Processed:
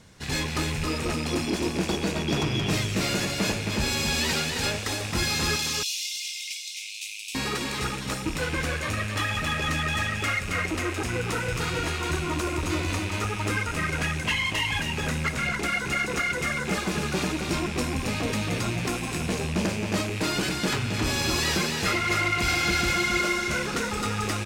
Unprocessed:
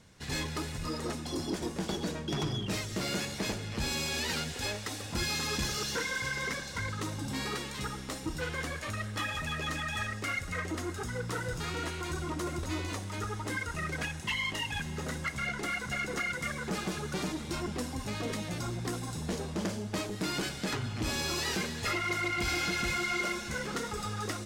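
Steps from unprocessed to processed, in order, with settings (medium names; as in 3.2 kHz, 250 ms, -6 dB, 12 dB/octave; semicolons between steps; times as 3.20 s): rattle on loud lows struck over -41 dBFS, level -31 dBFS; 5.56–7.35 s: steep high-pass 2.4 kHz 72 dB/octave; delay 269 ms -4.5 dB; trim +6 dB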